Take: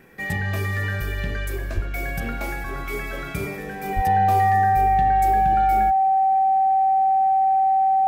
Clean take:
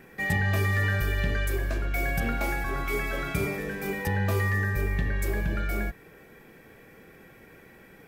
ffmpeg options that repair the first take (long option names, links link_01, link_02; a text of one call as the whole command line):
ffmpeg -i in.wav -filter_complex "[0:a]bandreject=frequency=770:width=30,asplit=3[link_01][link_02][link_03];[link_01]afade=type=out:start_time=1.74:duration=0.02[link_04];[link_02]highpass=frequency=140:width=0.5412,highpass=frequency=140:width=1.3066,afade=type=in:start_time=1.74:duration=0.02,afade=type=out:start_time=1.86:duration=0.02[link_05];[link_03]afade=type=in:start_time=1.86:duration=0.02[link_06];[link_04][link_05][link_06]amix=inputs=3:normalize=0,asplit=3[link_07][link_08][link_09];[link_07]afade=type=out:start_time=3.95:duration=0.02[link_10];[link_08]highpass=frequency=140:width=0.5412,highpass=frequency=140:width=1.3066,afade=type=in:start_time=3.95:duration=0.02,afade=type=out:start_time=4.07:duration=0.02[link_11];[link_09]afade=type=in:start_time=4.07:duration=0.02[link_12];[link_10][link_11][link_12]amix=inputs=3:normalize=0" out.wav